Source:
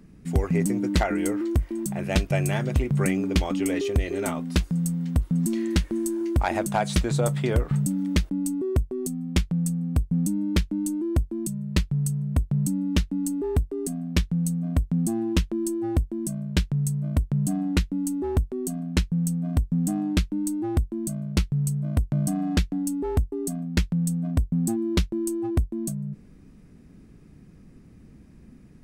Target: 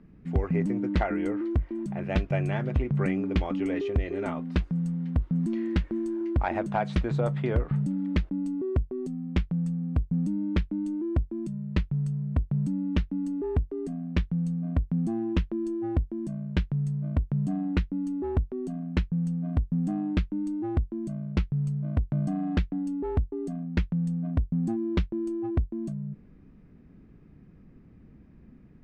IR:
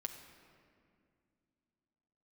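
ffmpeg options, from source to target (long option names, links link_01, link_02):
-af "lowpass=2400,volume=-3dB"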